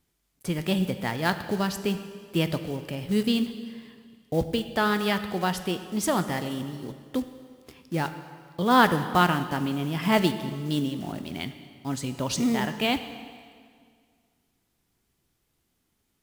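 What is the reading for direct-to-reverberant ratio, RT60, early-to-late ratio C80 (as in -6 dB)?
9.5 dB, 2.0 s, 11.5 dB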